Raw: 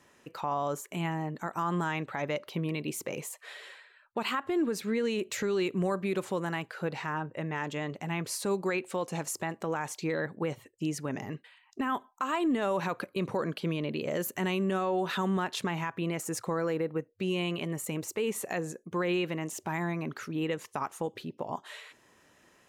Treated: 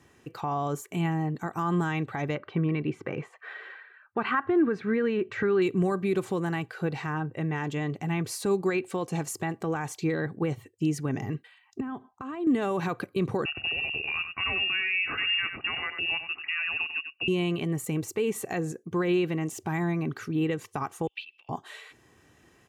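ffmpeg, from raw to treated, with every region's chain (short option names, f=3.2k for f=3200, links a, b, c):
-filter_complex "[0:a]asettb=1/sr,asplit=3[a][b][c];[a]atrim=end=2.354[d];[b]atrim=start=2.35:end=5.62,asetpts=PTS-STARTPTS,afade=t=in:d=0.004:c=qsin,afade=t=out:st=3.266:d=0.004:c=qsin,lowpass=2.2k,equalizer=f=1.5k:t=o:w=0.95:g=9[e];[c]atrim=start=5.616[f];[d][e]acrossfade=d=0.004:c1=hsin:c2=qsin[g];[g][f]acrossfade=d=0.004:c1=qsin:c2=hsin,asettb=1/sr,asplit=3[h][i][j];[h]atrim=end=11.804[k];[i]atrim=start=11.8:end=12.47,asetpts=PTS-STARTPTS,afade=t=in:d=0.004:c=qsin,afade=t=out:st=0.666:d=0.004:c=qsin,highpass=100,aemphasis=mode=reproduction:type=riaa,acompressor=threshold=-43dB:ratio=2:attack=3.2:release=140:knee=1:detection=peak[l];[j]atrim=start=12.466[m];[k][l]acrossfade=d=0.004:c1=hsin:c2=qsin[n];[n][m]acrossfade=d=0.004:c1=qsin:c2=hsin,asettb=1/sr,asplit=3[o][p][q];[o]atrim=end=13.454[r];[p]atrim=start=13.45:end=17.28,asetpts=PTS-STARTPTS,afade=t=in:d=0.004:c=qsin,afade=t=out:st=3.826:d=0.004:c=qsin,aecho=1:1:95:0.376,atrim=end_sample=168903,lowpass=f=2.6k:t=q:w=0.5098,lowpass=f=2.6k:t=q:w=0.6013,lowpass=f=2.6k:t=q:w=0.9,lowpass=f=2.6k:t=q:w=2.563,afreqshift=-3000[s];[q]atrim=start=17.276[t];[r][s]acrossfade=d=0.004:c1=hsin:c2=qsin[u];[u][t]acrossfade=d=0.004:c1=qsin:c2=hsin,asettb=1/sr,asplit=3[v][w][x];[v]atrim=end=21.074[y];[w]atrim=start=21.07:end=21.49,asetpts=PTS-STARTPTS,afade=t=in:d=0.004:c=qsin,afade=t=out:st=0.416:d=0.004:c=qsin,acompressor=threshold=-44dB:ratio=8:attack=3.2:release=140:knee=1:detection=peak,highpass=f=2.6k:t=q:w=10,highshelf=f=5.2k:t=q:w=1.5:g=-10.5[z];[x]atrim=start=21.486[aa];[y][z]acrossfade=d=0.004:c1=hsin:c2=qsin[ab];[ab][aa]acrossfade=d=0.004:c1=qsin:c2=hsin,highpass=62,bass=f=250:g=12,treble=f=4k:g=-1,aecho=1:1:2.6:0.41"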